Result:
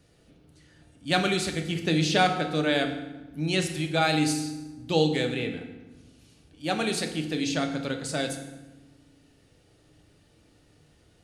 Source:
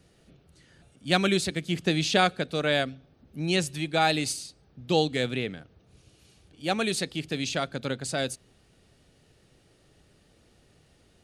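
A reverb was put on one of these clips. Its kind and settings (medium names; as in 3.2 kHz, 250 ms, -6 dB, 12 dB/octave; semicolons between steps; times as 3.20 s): FDN reverb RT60 1.1 s, low-frequency decay 1.55×, high-frequency decay 0.75×, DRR 4 dB; trim -1.5 dB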